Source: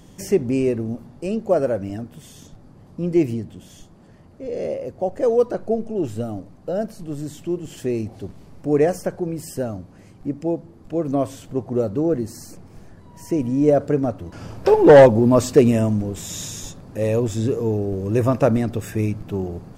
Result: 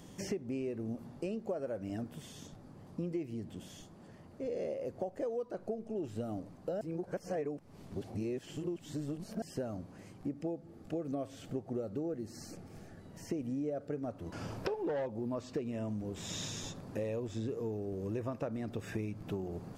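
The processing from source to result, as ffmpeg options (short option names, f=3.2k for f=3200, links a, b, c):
-filter_complex "[0:a]asettb=1/sr,asplit=3[a][b][c];[a]atrim=end=10.334[d];[b]atrim=start=10.33:end=14.03,asetpts=PTS-STARTPTS,afade=t=in:d=0.004:c=qsin,afade=t=out:st=3.696:d=0.004:c=qsin,asuperstop=centerf=1000:order=4:qfactor=6[e];[c]atrim=start=14.026[f];[d][e]acrossfade=d=0.004:c1=hsin:c2=qsin[g];[g][f]acrossfade=d=0.004:c1=qsin:c2=hsin,asplit=3[h][i][j];[h]atrim=end=6.812[k];[i]atrim=start=6.808:end=9.422,asetpts=PTS-STARTPTS,areverse[l];[j]atrim=start=9.418[m];[k][l]acrossfade=d=0.004:c1=hsin:c2=hsin[n];[n][m]acrossfade=d=0.004:c1=hsin:c2=hsin,acrossover=split=5700[o][p];[p]acompressor=threshold=-54dB:ratio=4:attack=1:release=60[q];[o][q]amix=inputs=2:normalize=0,lowshelf=f=70:g=-11.5,acompressor=threshold=-30dB:ratio=12,volume=-4dB"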